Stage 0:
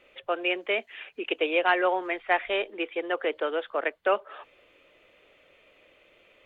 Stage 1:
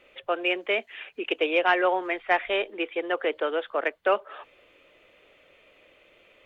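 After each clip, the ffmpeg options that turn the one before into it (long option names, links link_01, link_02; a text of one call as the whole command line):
ffmpeg -i in.wav -af "acontrast=39,volume=-4dB" out.wav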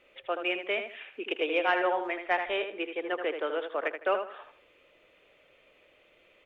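ffmpeg -i in.wav -filter_complex "[0:a]asplit=2[link_01][link_02];[link_02]adelay=79,lowpass=frequency=3600:poles=1,volume=-7dB,asplit=2[link_03][link_04];[link_04]adelay=79,lowpass=frequency=3600:poles=1,volume=0.28,asplit=2[link_05][link_06];[link_06]adelay=79,lowpass=frequency=3600:poles=1,volume=0.28[link_07];[link_01][link_03][link_05][link_07]amix=inputs=4:normalize=0,volume=-5dB" out.wav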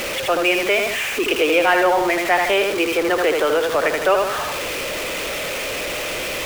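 ffmpeg -i in.wav -filter_complex "[0:a]aeval=exprs='val(0)+0.5*0.0251*sgn(val(0))':channel_layout=same,asplit=2[link_01][link_02];[link_02]alimiter=limit=-24dB:level=0:latency=1,volume=1dB[link_03];[link_01][link_03]amix=inputs=2:normalize=0,volume=5.5dB" out.wav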